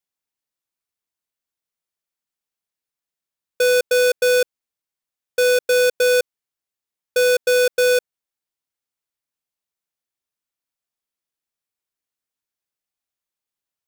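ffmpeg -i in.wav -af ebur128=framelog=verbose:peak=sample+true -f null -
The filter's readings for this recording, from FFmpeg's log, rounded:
Integrated loudness:
  I:         -17.8 LUFS
  Threshold: -28.0 LUFS
Loudness range:
  LRA:         6.4 LU
  Threshold: -40.9 LUFS
  LRA low:   -25.2 LUFS
  LRA high:  -18.8 LUFS
Sample peak:
  Peak:      -15.0 dBFS
True peak:
  Peak:      -12.9 dBFS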